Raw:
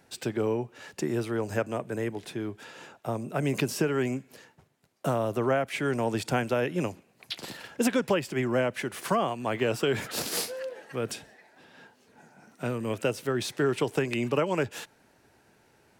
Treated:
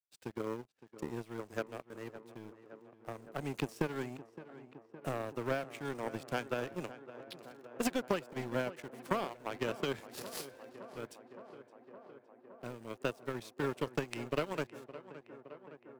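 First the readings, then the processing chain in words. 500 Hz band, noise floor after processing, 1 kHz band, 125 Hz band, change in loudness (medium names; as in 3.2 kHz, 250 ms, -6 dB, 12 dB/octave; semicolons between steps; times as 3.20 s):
-10.0 dB, -65 dBFS, -8.5 dB, -11.5 dB, -10.0 dB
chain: in parallel at -10 dB: bit crusher 6-bit; on the sum: power-law waveshaper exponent 2; tape echo 565 ms, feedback 86%, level -14 dB, low-pass 2.3 kHz; trim -4.5 dB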